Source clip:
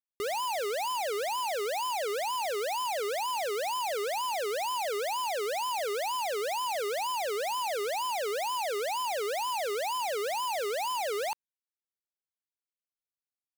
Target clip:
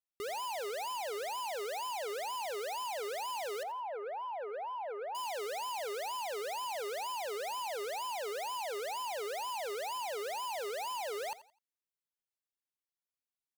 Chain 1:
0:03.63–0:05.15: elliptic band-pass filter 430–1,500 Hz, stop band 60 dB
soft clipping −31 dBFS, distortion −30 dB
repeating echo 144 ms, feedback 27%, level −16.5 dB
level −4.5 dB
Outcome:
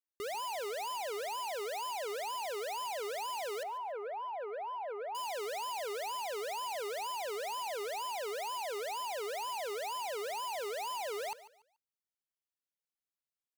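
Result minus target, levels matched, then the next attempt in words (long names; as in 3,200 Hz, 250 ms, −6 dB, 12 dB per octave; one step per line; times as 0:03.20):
echo 59 ms late
0:03.63–0:05.15: elliptic band-pass filter 430–1,500 Hz, stop band 60 dB
soft clipping −31 dBFS, distortion −30 dB
repeating echo 85 ms, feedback 27%, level −16.5 dB
level −4.5 dB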